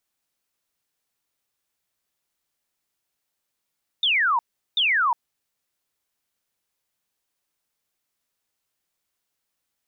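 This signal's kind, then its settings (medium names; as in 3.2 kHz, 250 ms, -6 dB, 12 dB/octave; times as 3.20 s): burst of laser zaps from 3.7 kHz, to 900 Hz, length 0.36 s sine, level -17.5 dB, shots 2, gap 0.38 s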